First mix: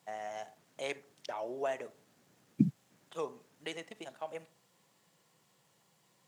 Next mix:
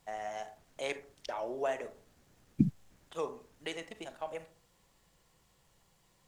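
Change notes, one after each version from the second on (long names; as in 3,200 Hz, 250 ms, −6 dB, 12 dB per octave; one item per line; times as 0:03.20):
first voice: send +7.0 dB
second voice: remove high-pass filter 130 Hz 24 dB per octave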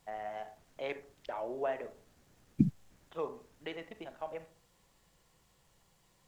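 first voice: add high-frequency loss of the air 300 metres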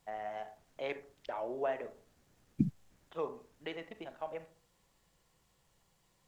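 second voice −3.5 dB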